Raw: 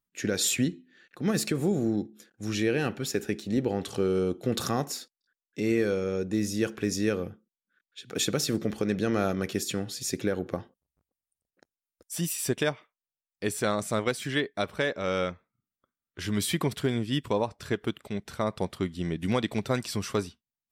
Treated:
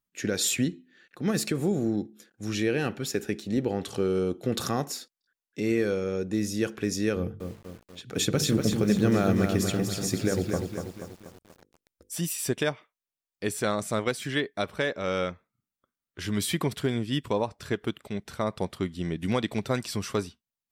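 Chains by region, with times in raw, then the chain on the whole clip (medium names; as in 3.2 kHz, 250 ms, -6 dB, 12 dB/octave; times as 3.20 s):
7.16–12.14 s: bass shelf 200 Hz +11 dB + hum notches 50/100/150/200/250/300/350/400/450/500 Hz + bit-crushed delay 241 ms, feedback 55%, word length 8-bit, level -5.5 dB
whole clip: none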